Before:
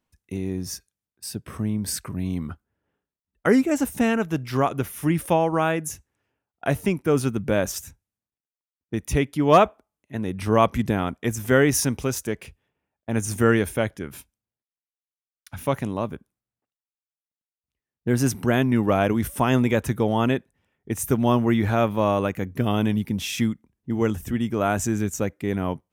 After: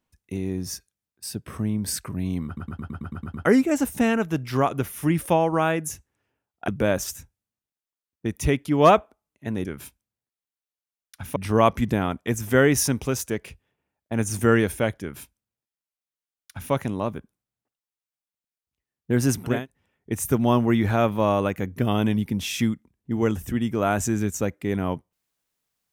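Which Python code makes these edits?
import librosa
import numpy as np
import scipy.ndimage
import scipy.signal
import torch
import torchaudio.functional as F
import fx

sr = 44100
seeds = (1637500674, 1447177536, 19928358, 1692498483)

y = fx.edit(x, sr, fx.stutter_over(start_s=2.46, slice_s=0.11, count=9),
    fx.cut(start_s=6.68, length_s=0.68),
    fx.duplicate(start_s=13.98, length_s=1.71, to_s=10.33),
    fx.cut(start_s=18.52, length_s=1.82, crossfade_s=0.24), tone=tone)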